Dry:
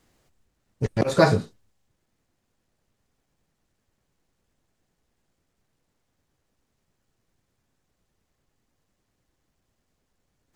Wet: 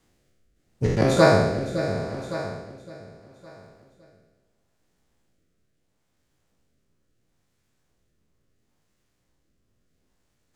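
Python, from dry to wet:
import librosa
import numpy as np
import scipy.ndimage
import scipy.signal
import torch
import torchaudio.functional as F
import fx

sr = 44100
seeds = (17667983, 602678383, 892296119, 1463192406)

y = fx.spec_trails(x, sr, decay_s=1.29)
y = fx.echo_feedback(y, sr, ms=561, feedback_pct=41, wet_db=-9.0)
y = fx.rotary(y, sr, hz=0.75)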